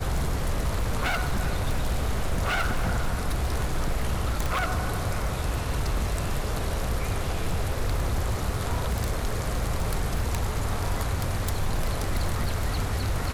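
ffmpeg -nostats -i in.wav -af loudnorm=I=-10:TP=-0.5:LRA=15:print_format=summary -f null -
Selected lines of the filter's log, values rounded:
Input Integrated:    -29.0 LUFS
Input True Peak:     -17.0 dBTP
Input LRA:             0.9 LU
Input Threshold:     -39.0 LUFS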